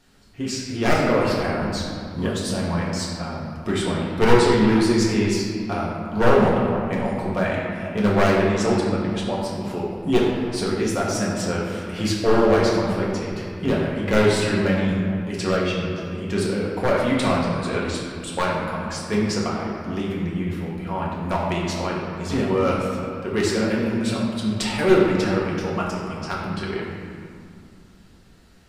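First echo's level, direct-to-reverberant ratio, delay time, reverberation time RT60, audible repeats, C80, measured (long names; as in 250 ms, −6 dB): no echo audible, −5.0 dB, no echo audible, 2.4 s, no echo audible, 1.5 dB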